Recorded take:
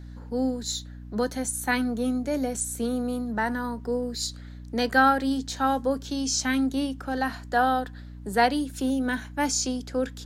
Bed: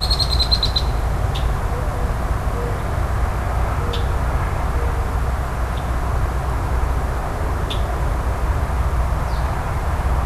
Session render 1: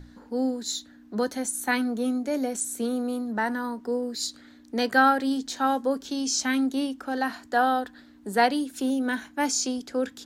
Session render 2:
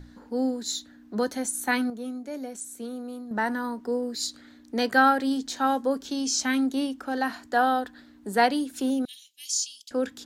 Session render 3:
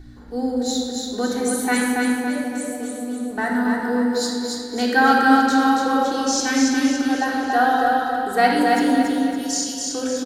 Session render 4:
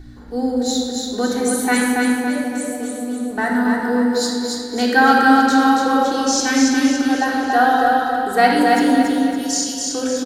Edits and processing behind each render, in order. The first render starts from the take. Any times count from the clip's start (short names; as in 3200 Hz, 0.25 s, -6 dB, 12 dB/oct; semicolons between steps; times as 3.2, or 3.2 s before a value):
notches 60/120/180 Hz
1.9–3.31 gain -8 dB; 9.05–9.91 elliptic high-pass 2900 Hz, stop band 50 dB
feedback echo 0.28 s, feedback 46%, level -3.5 dB; shoebox room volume 3500 m³, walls mixed, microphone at 3.5 m
gain +3 dB; limiter -2 dBFS, peak gain reduction 2.5 dB